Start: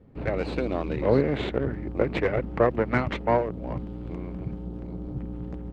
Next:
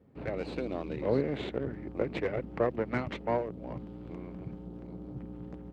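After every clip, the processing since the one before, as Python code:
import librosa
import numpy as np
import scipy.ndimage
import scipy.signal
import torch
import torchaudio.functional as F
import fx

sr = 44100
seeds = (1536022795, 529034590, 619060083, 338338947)

y = fx.highpass(x, sr, hz=120.0, slope=6)
y = fx.dynamic_eq(y, sr, hz=1300.0, q=0.72, threshold_db=-38.0, ratio=4.0, max_db=-4)
y = y * 10.0 ** (-5.5 / 20.0)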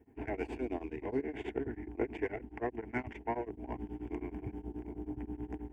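y = fx.rider(x, sr, range_db=5, speed_s=0.5)
y = fx.fixed_phaser(y, sr, hz=820.0, stages=8)
y = y * np.abs(np.cos(np.pi * 9.4 * np.arange(len(y)) / sr))
y = y * 10.0 ** (3.0 / 20.0)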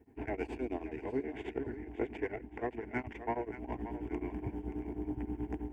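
y = fx.echo_thinned(x, sr, ms=577, feedback_pct=36, hz=420.0, wet_db=-11.5)
y = fx.rider(y, sr, range_db=10, speed_s=2.0)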